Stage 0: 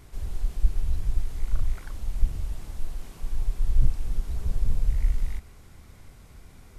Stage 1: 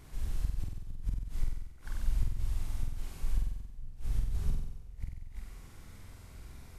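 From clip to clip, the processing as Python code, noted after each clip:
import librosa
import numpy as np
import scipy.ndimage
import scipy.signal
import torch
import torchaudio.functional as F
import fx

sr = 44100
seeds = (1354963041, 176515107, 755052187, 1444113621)

y = fx.gate_flip(x, sr, shuts_db=-16.0, range_db=-24)
y = fx.room_flutter(y, sr, wall_m=8.0, rt60_s=0.93)
y = fx.dynamic_eq(y, sr, hz=530.0, q=0.99, threshold_db=-58.0, ratio=4.0, max_db=-5)
y = y * 10.0 ** (-3.5 / 20.0)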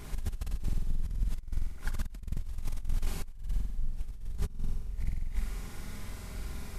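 y = x + 0.4 * np.pad(x, (int(4.9 * sr / 1000.0), 0))[:len(x)]
y = fx.over_compress(y, sr, threshold_db=-33.0, ratio=-0.5)
y = y * 10.0 ** (4.0 / 20.0)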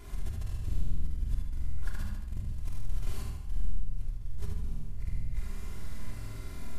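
y = fx.echo_feedback(x, sr, ms=75, feedback_pct=51, wet_db=-4.5)
y = fx.room_shoebox(y, sr, seeds[0], volume_m3=2300.0, walls='furnished', distance_m=3.1)
y = y * 10.0 ** (-7.0 / 20.0)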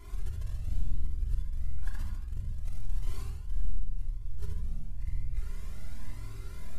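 y = fx.comb_cascade(x, sr, direction='rising', hz=0.97)
y = y * 10.0 ** (1.0 / 20.0)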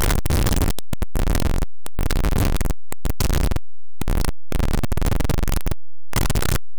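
y = np.sign(x) * np.sqrt(np.mean(np.square(x)))
y = y * 10.0 ** (9.0 / 20.0)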